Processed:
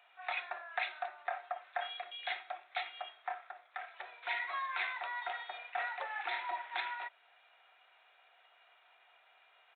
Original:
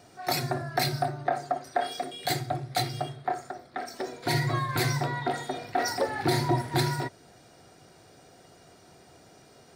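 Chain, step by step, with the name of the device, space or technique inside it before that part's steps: musical greeting card (downsampling 8000 Hz; HPF 830 Hz 24 dB/oct; bell 2500 Hz +7 dB 0.42 oct); gain -5.5 dB

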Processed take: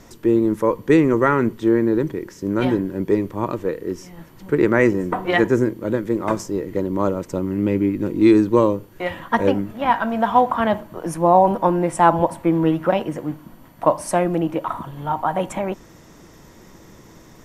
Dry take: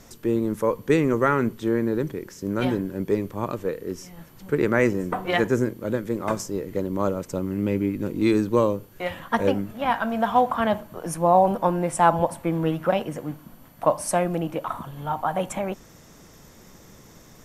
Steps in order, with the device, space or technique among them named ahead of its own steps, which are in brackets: inside a helmet (high shelf 5300 Hz -6 dB; small resonant body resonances 330/960/1900 Hz, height 6 dB); gain +3 dB

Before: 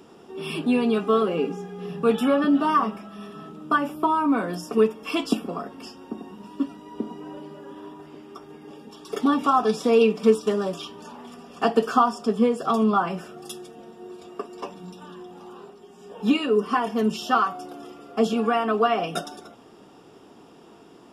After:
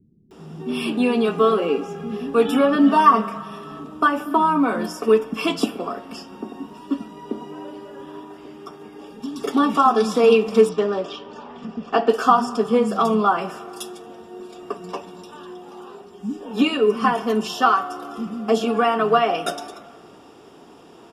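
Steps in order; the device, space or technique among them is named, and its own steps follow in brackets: 2.48–3.1 comb 4.4 ms, depth 90%; filtered reverb send (on a send at -14 dB: HPF 560 Hz + LPF 3200 Hz + reverb RT60 2.1 s, pre-delay 17 ms); 10.38–11.79 on the sum: air absorption 140 m; bands offset in time lows, highs 0.31 s, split 200 Hz; gain +4 dB

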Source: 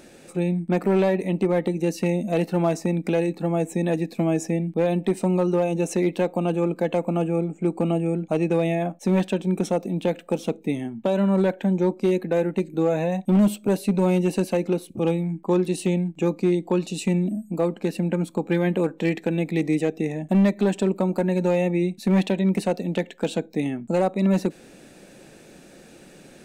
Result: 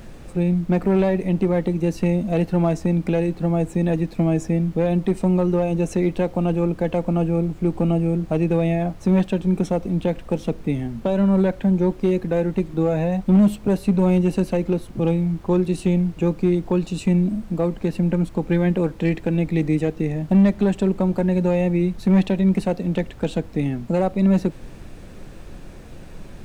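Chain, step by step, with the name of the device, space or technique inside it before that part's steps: car interior (bell 130 Hz +9 dB 0.93 oct; high shelf 4900 Hz -6.5 dB; brown noise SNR 17 dB)

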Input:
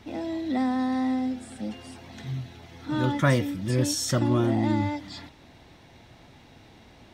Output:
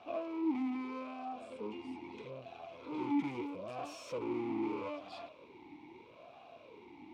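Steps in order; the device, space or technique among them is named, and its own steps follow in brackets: talk box (tube stage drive 38 dB, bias 0.65; vowel sweep a-u 0.78 Hz); gain +13 dB

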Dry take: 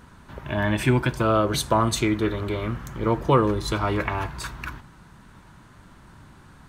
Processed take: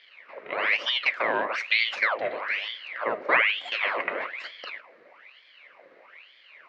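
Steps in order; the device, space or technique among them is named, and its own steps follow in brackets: voice changer toy (ring modulator with a swept carrier 1800 Hz, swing 85%, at 1.1 Hz; speaker cabinet 500–3800 Hz, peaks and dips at 550 Hz +7 dB, 840 Hz -7 dB, 1400 Hz -3 dB, 2100 Hz +6 dB, 3400 Hz -7 dB)

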